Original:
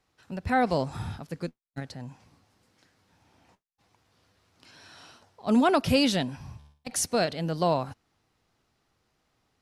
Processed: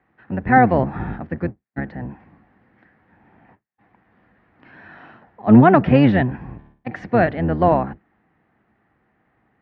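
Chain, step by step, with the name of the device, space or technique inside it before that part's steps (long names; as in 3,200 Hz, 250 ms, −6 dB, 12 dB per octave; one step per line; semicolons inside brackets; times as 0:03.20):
sub-octave bass pedal (sub-octave generator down 1 octave, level +2 dB; loudspeaker in its box 65–2,200 Hz, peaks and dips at 69 Hz −9 dB, 100 Hz −4 dB, 210 Hz +7 dB, 320 Hz +4 dB, 760 Hz +5 dB, 1,800 Hz +9 dB)
level +6.5 dB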